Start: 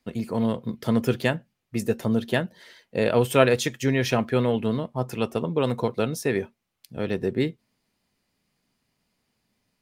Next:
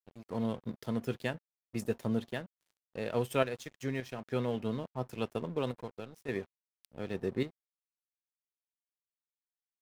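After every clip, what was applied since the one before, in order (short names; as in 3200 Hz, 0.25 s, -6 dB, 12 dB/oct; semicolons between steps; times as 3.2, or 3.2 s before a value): random-step tremolo, depth 70%; crossover distortion -42.5 dBFS; gain -7.5 dB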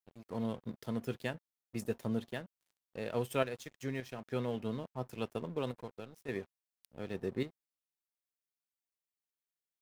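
high shelf 9800 Hz +3.5 dB; gain -3 dB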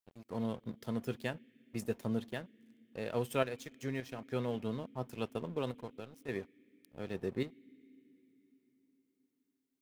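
on a send at -11 dB: vowel filter i + reverb RT60 4.6 s, pre-delay 53 ms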